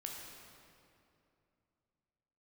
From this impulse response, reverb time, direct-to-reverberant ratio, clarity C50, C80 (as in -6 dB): 2.7 s, -1.0 dB, 1.0 dB, 2.5 dB